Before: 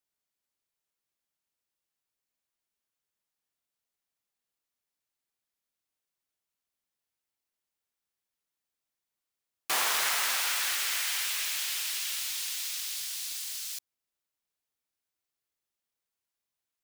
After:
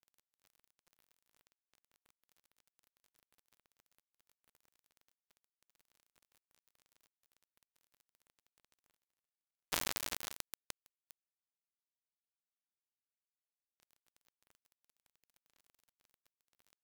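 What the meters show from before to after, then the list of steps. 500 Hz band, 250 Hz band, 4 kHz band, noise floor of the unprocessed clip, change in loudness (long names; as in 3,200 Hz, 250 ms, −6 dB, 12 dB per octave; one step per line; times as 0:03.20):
−8.0 dB, +0.5 dB, −17.0 dB, below −85 dBFS, −11.0 dB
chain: gap after every zero crossing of 0.3 ms
reversed playback
upward compression, threshold −59 dBFS
reversed playback
level +10 dB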